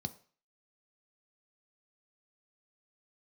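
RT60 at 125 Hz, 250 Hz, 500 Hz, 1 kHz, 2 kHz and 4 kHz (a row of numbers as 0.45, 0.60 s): 0.35, 0.35, 0.40, 0.45, 0.45, 0.45 s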